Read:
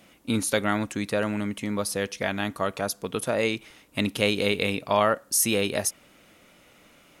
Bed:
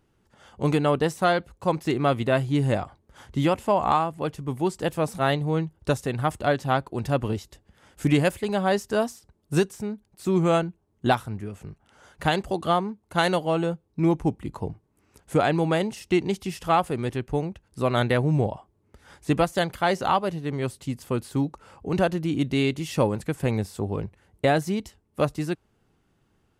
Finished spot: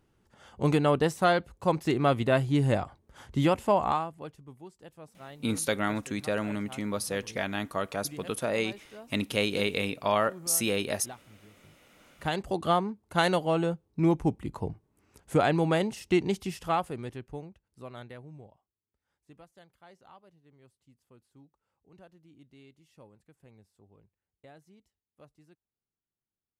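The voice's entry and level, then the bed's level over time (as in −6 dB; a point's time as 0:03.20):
5.15 s, −4.0 dB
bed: 0:03.75 −2 dB
0:04.69 −23.5 dB
0:11.42 −23.5 dB
0:12.58 −2.5 dB
0:16.40 −2.5 dB
0:18.86 −32 dB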